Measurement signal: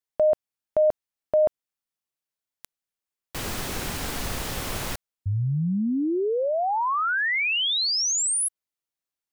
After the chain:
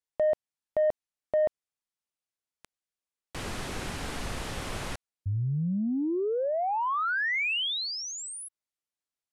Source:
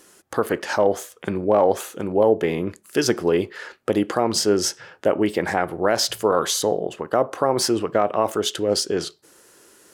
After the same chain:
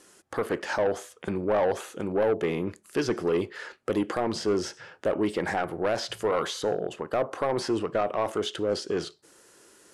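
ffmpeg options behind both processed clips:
ffmpeg -i in.wav -filter_complex "[0:a]acrossover=split=3600[link_01][link_02];[link_02]acompressor=threshold=-37dB:ratio=4:attack=1:release=60[link_03];[link_01][link_03]amix=inputs=2:normalize=0,lowpass=frequency=11000:width=0.5412,lowpass=frequency=11000:width=1.3066,acrossover=split=6000[link_04][link_05];[link_04]asoftclip=type=tanh:threshold=-14.5dB[link_06];[link_06][link_05]amix=inputs=2:normalize=0,volume=-3.5dB" out.wav

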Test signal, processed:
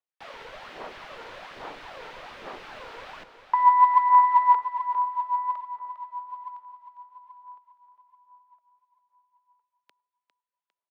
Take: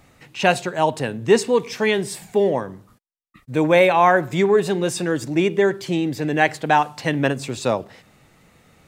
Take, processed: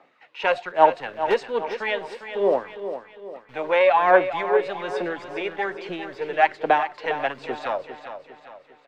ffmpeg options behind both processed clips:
ffmpeg -i in.wav -filter_complex "[0:a]aeval=exprs='0.891*(cos(1*acos(clip(val(0)/0.891,-1,1)))-cos(1*PI/2))+0.0891*(cos(4*acos(clip(val(0)/0.891,-1,1)))-cos(4*PI/2))':channel_layout=same,highshelf=frequency=6900:gain=-11.5,acrossover=split=210|1300[link_01][link_02][link_03];[link_01]acrusher=bits=4:dc=4:mix=0:aa=0.000001[link_04];[link_02]aphaser=in_gain=1:out_gain=1:delay=2.2:decay=0.72:speed=1.2:type=sinusoidal[link_05];[link_04][link_05][link_03]amix=inputs=3:normalize=0,acrossover=split=480 4300:gain=0.2 1 0.0891[link_06][link_07][link_08];[link_06][link_07][link_08]amix=inputs=3:normalize=0,asplit=2[link_09][link_10];[link_10]aecho=0:1:403|806|1209|1612|2015:0.299|0.131|0.0578|0.0254|0.0112[link_11];[link_09][link_11]amix=inputs=2:normalize=0,volume=-3.5dB" out.wav

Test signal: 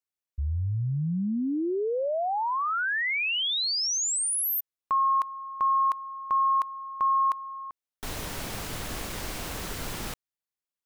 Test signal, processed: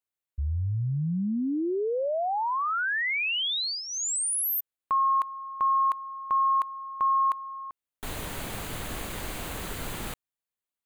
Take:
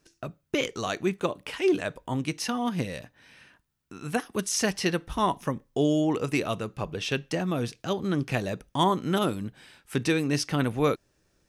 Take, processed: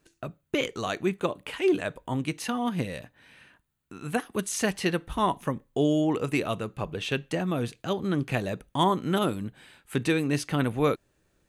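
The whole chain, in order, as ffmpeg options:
ffmpeg -i in.wav -af "equalizer=frequency=5400:width=4:gain=-11" out.wav

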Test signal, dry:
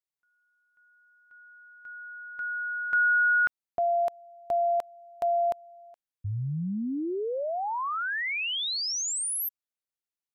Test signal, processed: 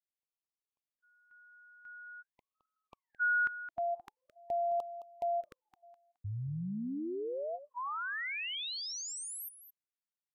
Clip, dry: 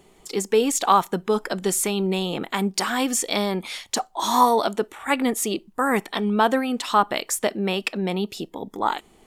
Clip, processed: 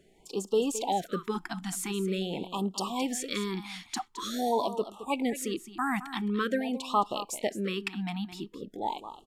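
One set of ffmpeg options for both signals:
ffmpeg -i in.wav -af "highshelf=frequency=5400:gain=-6.5,aecho=1:1:216:0.224,afftfilt=real='re*(1-between(b*sr/1024,460*pow(1900/460,0.5+0.5*sin(2*PI*0.46*pts/sr))/1.41,460*pow(1900/460,0.5+0.5*sin(2*PI*0.46*pts/sr))*1.41))':imag='im*(1-between(b*sr/1024,460*pow(1900/460,0.5+0.5*sin(2*PI*0.46*pts/sr))/1.41,460*pow(1900/460,0.5+0.5*sin(2*PI*0.46*pts/sr))*1.41))':win_size=1024:overlap=0.75,volume=-7dB" out.wav

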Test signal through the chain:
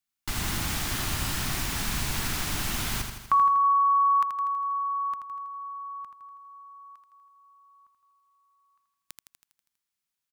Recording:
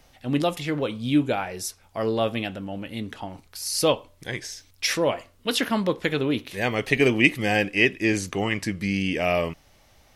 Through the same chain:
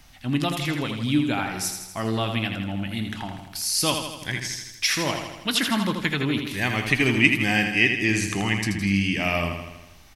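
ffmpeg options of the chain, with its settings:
ffmpeg -i in.wav -filter_complex "[0:a]equalizer=frequency=500:width=1.7:gain=-14,asplit=2[link_01][link_02];[link_02]acompressor=threshold=-32dB:ratio=6,volume=-2dB[link_03];[link_01][link_03]amix=inputs=2:normalize=0,aecho=1:1:81|162|243|324|405|486|567|648:0.473|0.279|0.165|0.0972|0.0573|0.0338|0.02|0.0118" out.wav

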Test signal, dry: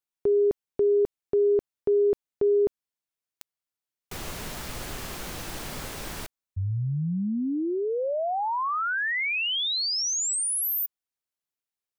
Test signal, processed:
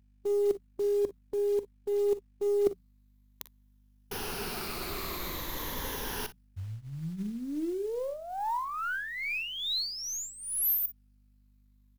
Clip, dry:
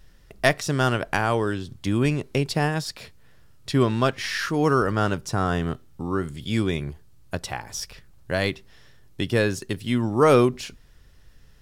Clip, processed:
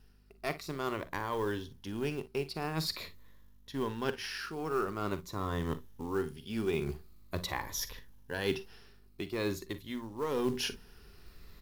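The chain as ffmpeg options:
ffmpeg -i in.wav -af "afftfilt=real='re*pow(10,8/40*sin(2*PI*(1.1*log(max(b,1)*sr/1024/100)/log(2)-(-0.46)*(pts-256)/sr)))':imag='im*pow(10,8/40*sin(2*PI*(1.1*log(max(b,1)*sr/1024/100)/log(2)-(-0.46)*(pts-256)/sr)))':win_size=1024:overlap=0.75,bandreject=frequency=60:width_type=h:width=6,bandreject=frequency=120:width_type=h:width=6,bandreject=frequency=180:width_type=h:width=6,aeval=exprs='0.708*(cos(1*acos(clip(val(0)/0.708,-1,1)))-cos(1*PI/2))+0.1*(cos(2*acos(clip(val(0)/0.708,-1,1)))-cos(2*PI/2))+0.0562*(cos(5*acos(clip(val(0)/0.708,-1,1)))-cos(5*PI/2))+0.0251*(cos(6*acos(clip(val(0)/0.708,-1,1)))-cos(6*PI/2))+0.0355*(cos(7*acos(clip(val(0)/0.708,-1,1)))-cos(7*PI/2))':channel_layout=same,areverse,acompressor=threshold=-33dB:ratio=10:attack=71:release=725:knee=1:detection=rms,areverse,aeval=exprs='val(0)+0.000794*(sin(2*PI*50*n/s)+sin(2*PI*2*50*n/s)/2+sin(2*PI*3*50*n/s)/3+sin(2*PI*4*50*n/s)/4+sin(2*PI*5*50*n/s)/5)':channel_layout=same,equalizer=frequency=125:width_type=o:width=0.33:gain=-8,equalizer=frequency=400:width_type=o:width=0.33:gain=6,equalizer=frequency=630:width_type=o:width=0.33:gain=-5,equalizer=frequency=1000:width_type=o:width=0.33:gain=5,equalizer=frequency=4000:width_type=o:width=0.33:gain=3,equalizer=frequency=8000:width_type=o:width=0.33:gain=-11,equalizer=frequency=12500:width_type=o:width=0.33:gain=8,acrusher=bits=6:mode=log:mix=0:aa=0.000001,aecho=1:1:44|57:0.178|0.133" out.wav

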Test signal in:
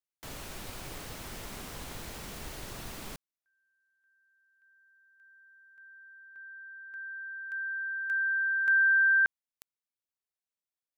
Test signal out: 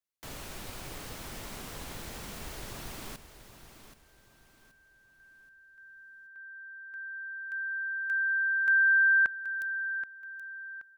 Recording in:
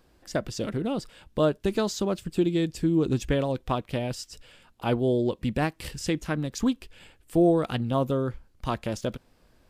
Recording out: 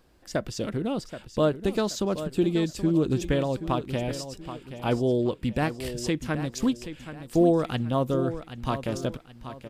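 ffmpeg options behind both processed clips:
ffmpeg -i in.wav -af "aecho=1:1:777|1554|2331|3108:0.266|0.0931|0.0326|0.0114" out.wav

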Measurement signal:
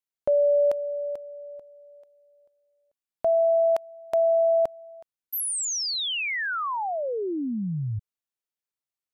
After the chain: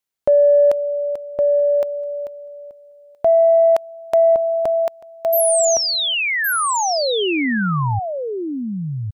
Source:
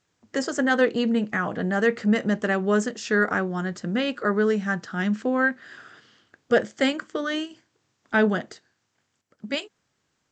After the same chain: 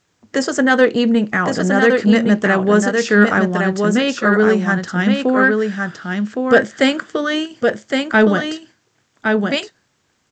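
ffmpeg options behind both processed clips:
ffmpeg -i in.wav -af "aecho=1:1:1114:0.596,acontrast=30,volume=3dB" out.wav

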